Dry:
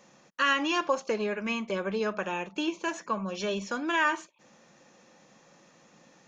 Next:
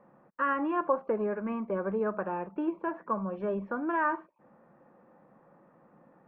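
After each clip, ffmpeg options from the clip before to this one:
ffmpeg -i in.wav -af "lowpass=frequency=1400:width=0.5412,lowpass=frequency=1400:width=1.3066" out.wav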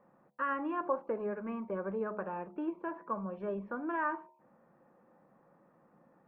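ffmpeg -i in.wav -af "bandreject=frequency=70.97:width_type=h:width=4,bandreject=frequency=141.94:width_type=h:width=4,bandreject=frequency=212.91:width_type=h:width=4,bandreject=frequency=283.88:width_type=h:width=4,bandreject=frequency=354.85:width_type=h:width=4,bandreject=frequency=425.82:width_type=h:width=4,bandreject=frequency=496.79:width_type=h:width=4,bandreject=frequency=567.76:width_type=h:width=4,bandreject=frequency=638.73:width_type=h:width=4,bandreject=frequency=709.7:width_type=h:width=4,bandreject=frequency=780.67:width_type=h:width=4,bandreject=frequency=851.64:width_type=h:width=4,bandreject=frequency=922.61:width_type=h:width=4,bandreject=frequency=993.58:width_type=h:width=4,volume=-5dB" out.wav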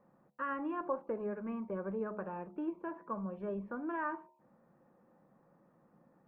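ffmpeg -i in.wav -af "lowshelf=frequency=280:gain=7,volume=-4.5dB" out.wav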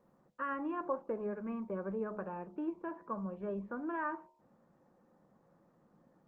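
ffmpeg -i in.wav -ar 48000 -c:a libopus -b:a 24k out.opus

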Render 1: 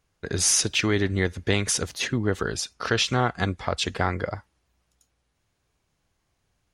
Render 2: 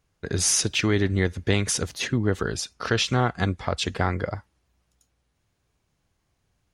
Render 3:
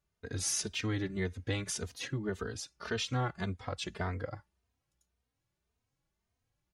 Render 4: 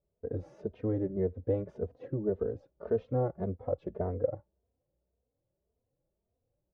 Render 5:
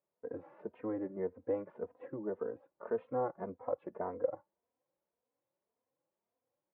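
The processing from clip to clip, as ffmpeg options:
ffmpeg -i in.wav -af "equalizer=frequency=110:width=0.35:gain=3.5,volume=-1dB" out.wav
ffmpeg -i in.wav -filter_complex "[0:a]asplit=2[link_01][link_02];[link_02]adelay=3,afreqshift=1.8[link_03];[link_01][link_03]amix=inputs=2:normalize=1,volume=-8.5dB" out.wav
ffmpeg -i in.wav -af "lowpass=frequency=540:width_type=q:width=4.1" out.wav
ffmpeg -i in.wav -af "highpass=390,equalizer=frequency=410:width_type=q:width=4:gain=-9,equalizer=frequency=630:width_type=q:width=4:gain=-7,equalizer=frequency=1000:width_type=q:width=4:gain=7,lowpass=frequency=2300:width=0.5412,lowpass=frequency=2300:width=1.3066,volume=2.5dB" out.wav

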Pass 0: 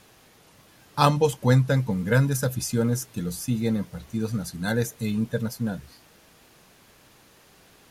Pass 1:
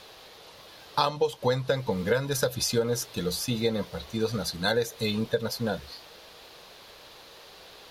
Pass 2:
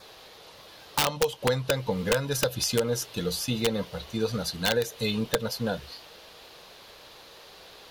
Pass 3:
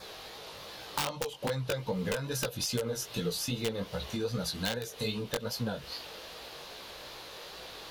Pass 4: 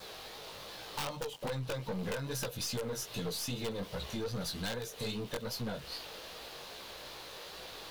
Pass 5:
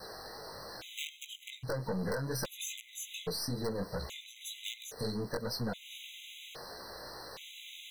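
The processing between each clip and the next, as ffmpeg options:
ffmpeg -i in.wav -af "equalizer=frequency=125:width_type=o:width=1:gain=-5,equalizer=frequency=250:width_type=o:width=1:gain=-6,equalizer=frequency=500:width_type=o:width=1:gain=8,equalizer=frequency=1000:width_type=o:width=1:gain=4,equalizer=frequency=4000:width_type=o:width=1:gain=12,equalizer=frequency=8000:width_type=o:width=1:gain=-5,acompressor=threshold=-23dB:ratio=8,volume=1.5dB" out.wav
ffmpeg -i in.wav -af "aeval=exprs='(mod(5.62*val(0)+1,2)-1)/5.62':channel_layout=same,adynamicequalizer=threshold=0.00224:dfrequency=2900:dqfactor=6.2:tfrequency=2900:tqfactor=6.2:attack=5:release=100:ratio=0.375:range=3:mode=boostabove:tftype=bell" out.wav
ffmpeg -i in.wav -af "acompressor=threshold=-35dB:ratio=4,flanger=delay=15.5:depth=5.8:speed=2.5,volume=6.5dB" out.wav
ffmpeg -i in.wav -af "aeval=exprs='(tanh(39.8*val(0)+0.35)-tanh(0.35))/39.8':channel_layout=same,aeval=exprs='val(0)*gte(abs(val(0)),0.00224)':channel_layout=same" out.wav
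ffmpeg -i in.wav -af "afftfilt=real='re*gt(sin(2*PI*0.61*pts/sr)*(1-2*mod(floor(b*sr/1024/2000),2)),0)':imag='im*gt(sin(2*PI*0.61*pts/sr)*(1-2*mod(floor(b*sr/1024/2000),2)),0)':win_size=1024:overlap=0.75,volume=2.5dB" out.wav

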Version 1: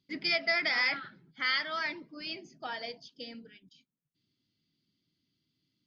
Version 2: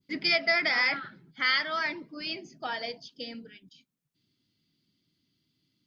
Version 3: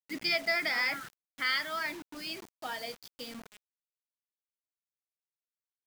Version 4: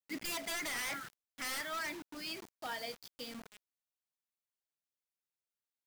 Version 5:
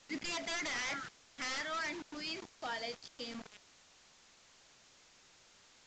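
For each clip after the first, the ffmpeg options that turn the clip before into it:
ffmpeg -i in.wav -af "adynamicequalizer=threshold=0.00794:dfrequency=3700:dqfactor=0.89:tfrequency=3700:tqfactor=0.89:attack=5:release=100:ratio=0.375:range=2.5:mode=cutabove:tftype=bell,volume=4.5dB" out.wav
ffmpeg -i in.wav -af "acrusher=bits=6:mix=0:aa=0.000001,volume=-4.5dB" out.wav
ffmpeg -i in.wav -af "aeval=exprs='0.0282*(abs(mod(val(0)/0.0282+3,4)-2)-1)':channel_layout=same,volume=-2.5dB" out.wav
ffmpeg -i in.wav -af "aeval=exprs='val(0)+0.5*0.00316*sgn(val(0))':channel_layout=same" -ar 16000 -c:a pcm_mulaw out.wav

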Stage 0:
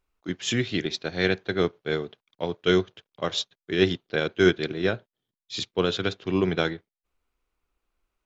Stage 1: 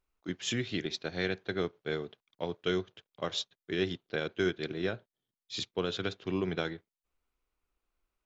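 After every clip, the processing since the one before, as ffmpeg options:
ffmpeg -i in.wav -af "acompressor=threshold=-25dB:ratio=2,volume=-5dB" out.wav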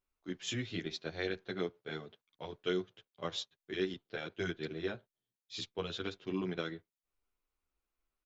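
ffmpeg -i in.wav -filter_complex "[0:a]asplit=2[link_01][link_02];[link_02]adelay=10.5,afreqshift=-0.83[link_03];[link_01][link_03]amix=inputs=2:normalize=1,volume=-2dB" out.wav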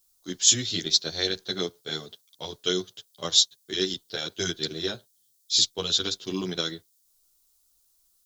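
ffmpeg -i in.wav -af "aexciter=amount=11.2:drive=3.8:freq=3600,volume=5.5dB" out.wav

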